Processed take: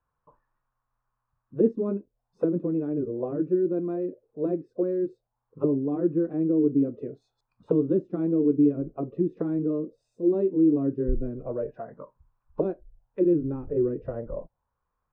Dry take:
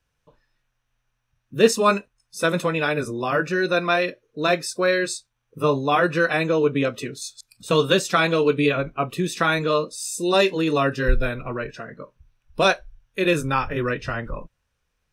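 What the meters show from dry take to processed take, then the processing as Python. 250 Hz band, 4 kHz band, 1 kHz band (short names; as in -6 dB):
+2.0 dB, under -40 dB, -22.0 dB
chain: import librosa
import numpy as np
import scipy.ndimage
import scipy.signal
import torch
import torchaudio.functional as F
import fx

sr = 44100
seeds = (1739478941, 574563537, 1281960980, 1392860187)

y = fx.envelope_lowpass(x, sr, base_hz=320.0, top_hz=1100.0, q=4.0, full_db=-19.0, direction='down')
y = y * 10.0 ** (-7.5 / 20.0)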